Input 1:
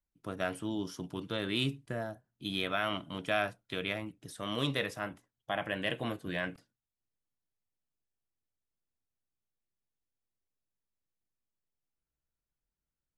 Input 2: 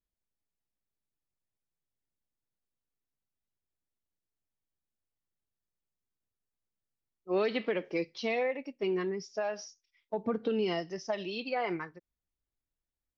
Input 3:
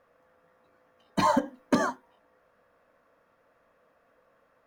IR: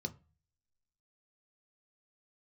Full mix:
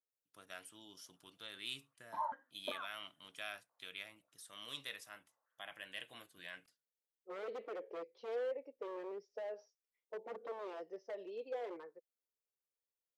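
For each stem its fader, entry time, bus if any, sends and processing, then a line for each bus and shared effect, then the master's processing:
0.0 dB, 0.10 s, no send, pre-emphasis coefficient 0.97
-17.0 dB, 0.00 s, no send, tilt shelf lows +5.5 dB, about 1200 Hz; wavefolder -27 dBFS; resonant high-pass 480 Hz, resonance Q 4.9
-12.0 dB, 0.95 s, no send, stepped band-pass 5.1 Hz 620–2300 Hz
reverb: off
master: high shelf 4900 Hz -8 dB

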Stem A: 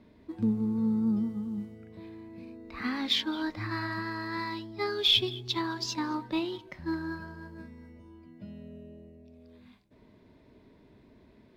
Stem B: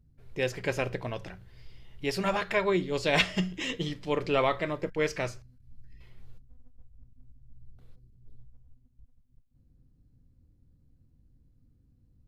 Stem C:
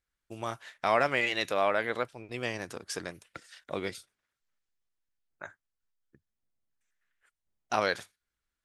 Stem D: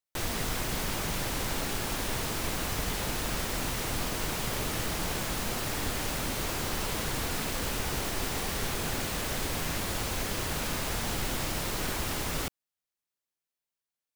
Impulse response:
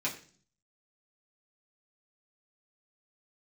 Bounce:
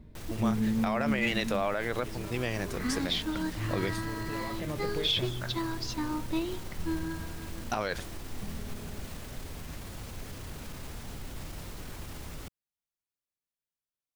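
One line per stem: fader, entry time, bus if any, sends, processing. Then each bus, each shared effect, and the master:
-4.0 dB, 0.00 s, no send, dry
+3.0 dB, 0.00 s, no send, compressor, threshold -33 dBFS, peak gain reduction 13.5 dB; limiter -33 dBFS, peak gain reduction 11 dB; auto duck -10 dB, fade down 0.25 s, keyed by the third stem
+1.5 dB, 0.00 s, no send, dry
-7.5 dB, 0.00 s, no send, limiter -29.5 dBFS, peak gain reduction 11 dB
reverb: off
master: low shelf 240 Hz +9 dB; limiter -18.5 dBFS, peak gain reduction 10 dB

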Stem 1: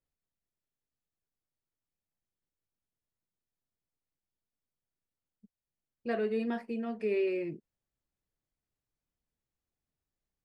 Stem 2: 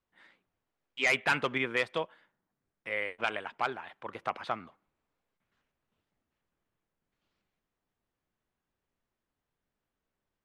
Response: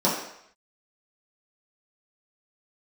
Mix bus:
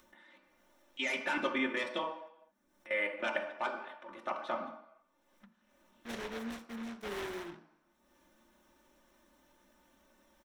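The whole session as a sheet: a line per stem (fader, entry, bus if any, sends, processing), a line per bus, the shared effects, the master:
-13.0 dB, 0.00 s, send -21.5 dB, noise-modulated delay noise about 1300 Hz, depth 0.36 ms
-0.5 dB, 0.00 s, send -13.5 dB, low shelf 440 Hz -8 dB; level quantiser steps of 19 dB; comb 3.4 ms, depth 80%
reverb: on, RT60 0.70 s, pre-delay 3 ms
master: low shelf 140 Hz +4.5 dB; upward compressor, threshold -50 dBFS

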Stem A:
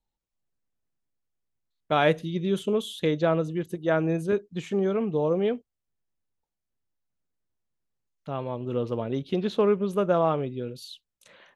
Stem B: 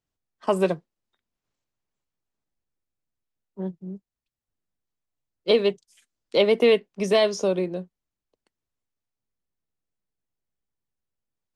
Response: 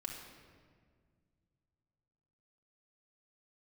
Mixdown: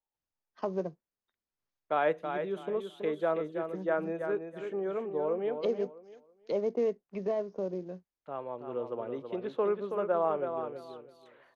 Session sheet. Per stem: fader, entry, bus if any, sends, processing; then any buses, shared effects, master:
-4.5 dB, 0.00 s, no send, echo send -7 dB, three-band isolator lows -17 dB, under 330 Hz, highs -17 dB, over 2100 Hz; de-esser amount 90%
-8.0 dB, 0.15 s, no send, no echo send, treble ducked by the level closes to 790 Hz, closed at -21 dBFS; short-mantissa float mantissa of 4-bit; rippled Chebyshev low-pass 6600 Hz, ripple 3 dB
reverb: off
echo: feedback echo 0.326 s, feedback 23%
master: dry

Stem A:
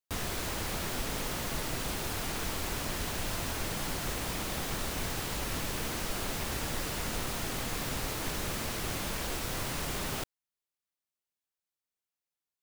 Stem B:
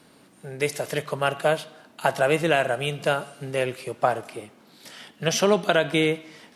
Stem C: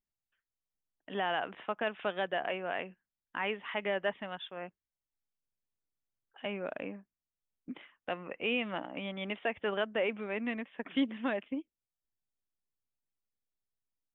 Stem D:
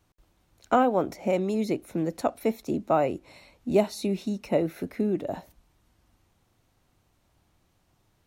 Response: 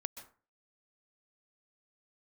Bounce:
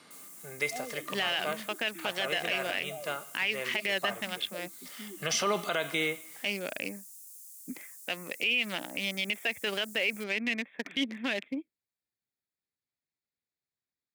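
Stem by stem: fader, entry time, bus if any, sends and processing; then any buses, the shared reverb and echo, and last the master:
-6.5 dB, 0.00 s, no send, inverse Chebyshev high-pass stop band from 1800 Hz, stop band 70 dB
-2.5 dB, 0.00 s, no send, LPF 8200 Hz; tilt +2 dB/oct; small resonant body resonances 1200/2100 Hz, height 13 dB; auto duck -10 dB, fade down 0.90 s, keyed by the third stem
+2.0 dB, 0.00 s, no send, Wiener smoothing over 15 samples; resonant high shelf 1700 Hz +13 dB, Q 1.5
-19.5 dB, 0.00 s, no send, spectral contrast raised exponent 3.5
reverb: off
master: HPF 87 Hz; limiter -18.5 dBFS, peak gain reduction 10.5 dB

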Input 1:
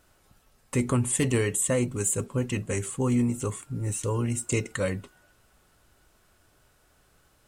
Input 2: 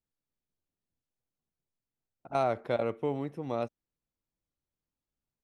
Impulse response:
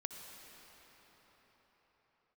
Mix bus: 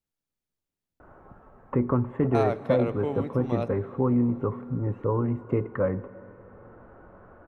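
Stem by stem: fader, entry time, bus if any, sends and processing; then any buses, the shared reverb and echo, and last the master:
+2.5 dB, 1.00 s, send -9 dB, LPF 1300 Hz 24 dB/oct; low shelf 190 Hz -6 dB; three-band squash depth 40%
-1.0 dB, 0.00 s, send -8.5 dB, dry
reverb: on, pre-delay 57 ms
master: dry

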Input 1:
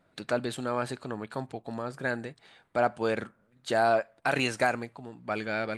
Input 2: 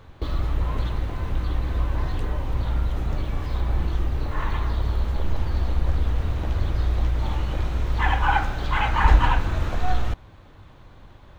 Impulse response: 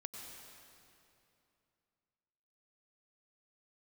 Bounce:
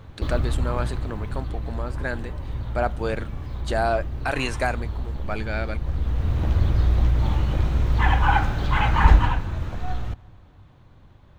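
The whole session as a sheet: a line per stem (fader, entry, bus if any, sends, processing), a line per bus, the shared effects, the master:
+1.0 dB, 0.00 s, no send, dry
9.07 s -0.5 dB -> 9.44 s -8 dB, 0.00 s, send -17.5 dB, bell 130 Hz +7 dB 2.1 oct; auto duck -10 dB, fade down 1.60 s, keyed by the first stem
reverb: on, RT60 2.8 s, pre-delay 87 ms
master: dry

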